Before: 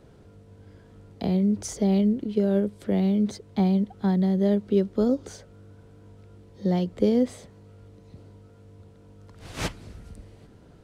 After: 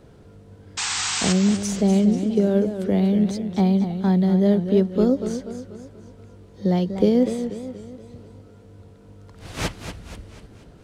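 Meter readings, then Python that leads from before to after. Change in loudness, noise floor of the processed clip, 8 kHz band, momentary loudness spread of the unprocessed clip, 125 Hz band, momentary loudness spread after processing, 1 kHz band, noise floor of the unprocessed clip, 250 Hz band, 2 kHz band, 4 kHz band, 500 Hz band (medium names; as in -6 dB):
+4.0 dB, -48 dBFS, no reading, 10 LU, +4.5 dB, 18 LU, +5.0 dB, -52 dBFS, +4.0 dB, +10.0 dB, +12.0 dB, +4.0 dB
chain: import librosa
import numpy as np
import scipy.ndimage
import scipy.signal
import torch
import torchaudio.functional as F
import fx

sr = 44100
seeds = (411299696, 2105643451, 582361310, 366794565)

y = fx.spec_paint(x, sr, seeds[0], shape='noise', start_s=0.77, length_s=0.56, low_hz=730.0, high_hz=8500.0, level_db=-29.0)
y = fx.echo_warbled(y, sr, ms=241, feedback_pct=48, rate_hz=2.8, cents=131, wet_db=-9.5)
y = F.gain(torch.from_numpy(y), 3.5).numpy()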